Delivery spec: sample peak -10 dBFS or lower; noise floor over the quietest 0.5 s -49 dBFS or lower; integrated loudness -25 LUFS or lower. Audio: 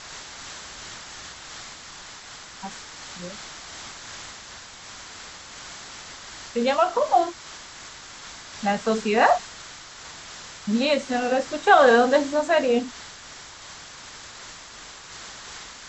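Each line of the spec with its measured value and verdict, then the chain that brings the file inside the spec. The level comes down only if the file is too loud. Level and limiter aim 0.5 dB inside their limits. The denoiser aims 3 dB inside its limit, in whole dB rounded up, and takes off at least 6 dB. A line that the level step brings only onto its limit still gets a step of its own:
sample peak -4.5 dBFS: fail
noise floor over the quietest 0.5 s -43 dBFS: fail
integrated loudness -21.5 LUFS: fail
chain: noise reduction 6 dB, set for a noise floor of -43 dBFS; trim -4 dB; peak limiter -10.5 dBFS

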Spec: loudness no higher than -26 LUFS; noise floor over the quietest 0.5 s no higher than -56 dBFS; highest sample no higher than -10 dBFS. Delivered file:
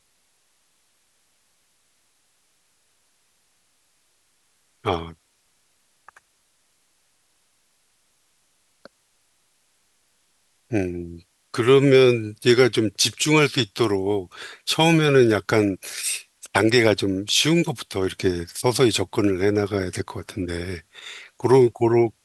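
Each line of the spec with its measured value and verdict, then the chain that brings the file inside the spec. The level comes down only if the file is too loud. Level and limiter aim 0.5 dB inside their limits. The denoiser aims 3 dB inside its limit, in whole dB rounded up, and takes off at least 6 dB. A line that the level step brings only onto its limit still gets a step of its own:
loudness -20.5 LUFS: fail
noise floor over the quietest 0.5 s -66 dBFS: pass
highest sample -1.5 dBFS: fail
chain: trim -6 dB; peak limiter -10.5 dBFS

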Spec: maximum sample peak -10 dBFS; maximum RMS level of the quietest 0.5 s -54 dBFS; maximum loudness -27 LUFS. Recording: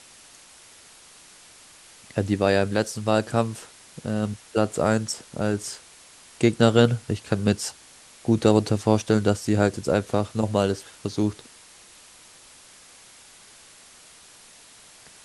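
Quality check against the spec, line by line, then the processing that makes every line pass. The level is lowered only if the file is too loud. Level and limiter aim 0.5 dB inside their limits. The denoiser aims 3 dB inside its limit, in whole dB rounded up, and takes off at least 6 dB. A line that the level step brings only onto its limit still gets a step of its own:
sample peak -3.0 dBFS: fail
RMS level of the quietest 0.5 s -50 dBFS: fail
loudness -24.0 LUFS: fail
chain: noise reduction 6 dB, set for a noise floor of -50 dBFS; trim -3.5 dB; peak limiter -10.5 dBFS

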